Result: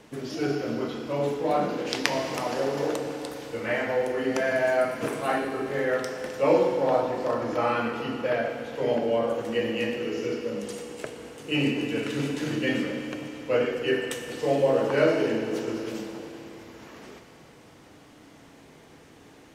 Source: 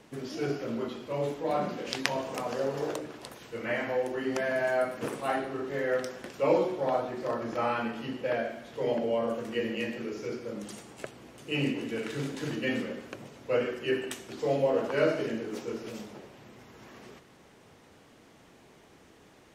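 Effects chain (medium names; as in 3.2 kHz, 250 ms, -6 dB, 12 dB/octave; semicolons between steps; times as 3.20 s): FDN reverb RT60 3.5 s, high-frequency decay 1×, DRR 5.5 dB; trim +3.5 dB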